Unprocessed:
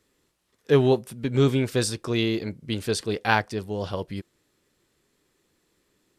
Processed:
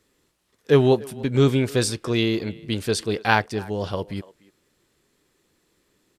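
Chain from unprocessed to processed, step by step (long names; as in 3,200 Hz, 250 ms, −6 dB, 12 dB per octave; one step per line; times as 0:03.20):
far-end echo of a speakerphone 290 ms, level −20 dB
level +2.5 dB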